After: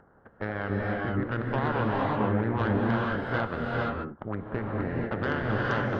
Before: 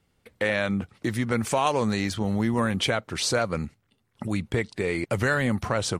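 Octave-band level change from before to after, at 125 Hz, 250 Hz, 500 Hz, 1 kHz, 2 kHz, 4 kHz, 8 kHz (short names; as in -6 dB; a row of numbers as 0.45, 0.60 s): -0.5 dB, -2.5 dB, -3.5 dB, -0.5 dB, -3.0 dB, -13.5 dB, under -30 dB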